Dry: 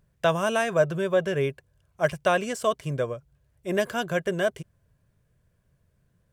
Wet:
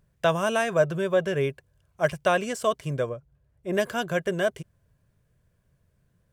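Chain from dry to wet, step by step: 3.09–3.73 high shelf 2200 Hz -10 dB

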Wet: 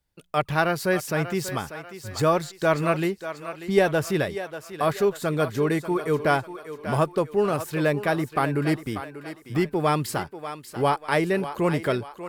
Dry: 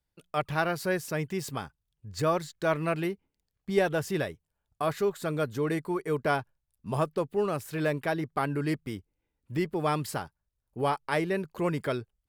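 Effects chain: thinning echo 0.59 s, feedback 45%, high-pass 370 Hz, level -10.5 dB; gain +5.5 dB

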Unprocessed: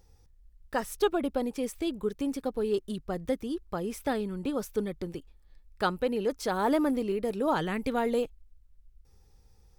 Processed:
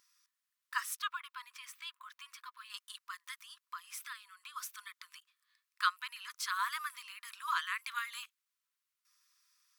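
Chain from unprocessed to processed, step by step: 1–2.7 bell 9900 Hz -10.5 dB 1.9 oct; 3.34–4.56 compressor 3:1, threshold -34 dBFS, peak gain reduction 7.5 dB; brick-wall FIR high-pass 970 Hz; gain +1 dB

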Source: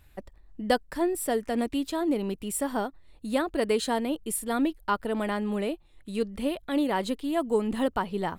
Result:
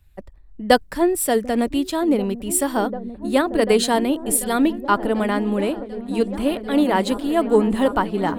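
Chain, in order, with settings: repeats that get brighter 0.742 s, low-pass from 200 Hz, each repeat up 1 oct, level -6 dB; three-band expander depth 40%; gain +8 dB

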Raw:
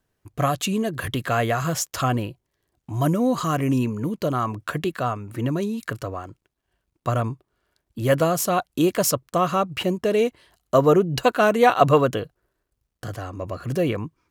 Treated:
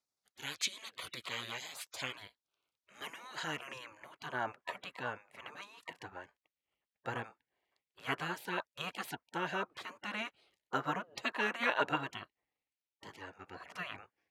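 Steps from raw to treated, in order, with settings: band-pass sweep 2900 Hz -> 1300 Hz, 0.94–4.7; spectral gate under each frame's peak -15 dB weak; gain +6 dB

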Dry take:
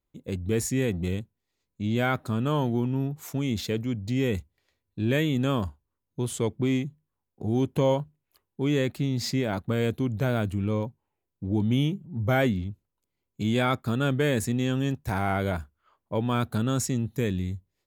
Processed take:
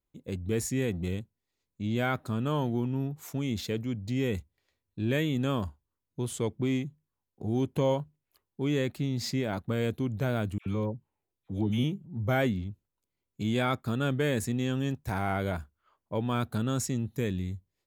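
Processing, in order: 10.58–11.84 dispersion lows, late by 80 ms, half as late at 1100 Hz; gain -3.5 dB

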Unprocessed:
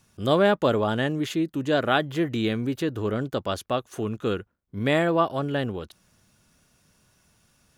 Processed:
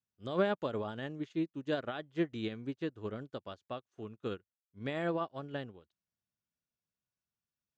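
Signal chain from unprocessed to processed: HPF 46 Hz; limiter -14.5 dBFS, peak gain reduction 7 dB; LPF 6800 Hz 24 dB/oct; upward expander 2.5:1, over -39 dBFS; gain -5 dB

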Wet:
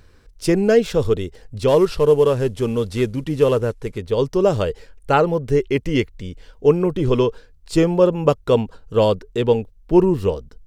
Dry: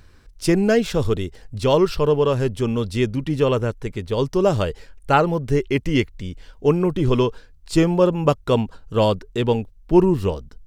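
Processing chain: 1.68–3.98 CVSD 64 kbps; bell 470 Hz +6 dB 0.51 oct; gain -1 dB

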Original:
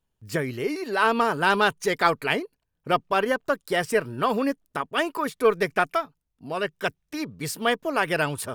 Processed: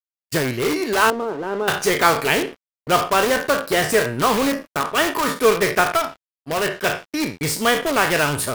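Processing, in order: spectral trails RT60 0.37 s; gate -38 dBFS, range -16 dB; in parallel at -3.5 dB: wrapped overs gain 22 dB; 1.1–1.68 on the sum: band-pass 380 Hz, Q 1.8; crossover distortion -43 dBFS; gain +4 dB

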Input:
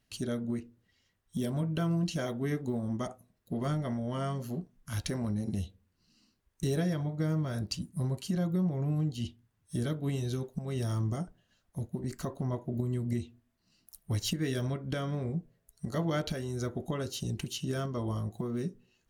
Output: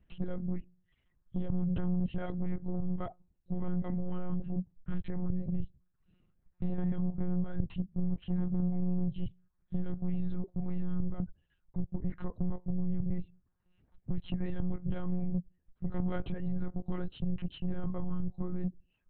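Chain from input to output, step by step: reverb removal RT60 0.66 s; resonant low shelf 190 Hz +9 dB, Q 1.5; compressor 2.5:1, threshold -27 dBFS, peak gain reduction 7.5 dB; soft clip -27.5 dBFS, distortion -14 dB; air absorption 500 m; monotone LPC vocoder at 8 kHz 180 Hz; gain +2.5 dB

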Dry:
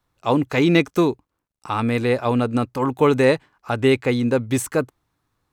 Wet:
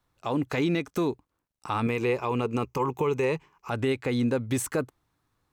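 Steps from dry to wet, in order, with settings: 1.86–3.71 ripple EQ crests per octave 0.76, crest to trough 10 dB; compressor, threshold -19 dBFS, peak gain reduction 10 dB; limiter -15.5 dBFS, peak gain reduction 6.5 dB; gain -2 dB

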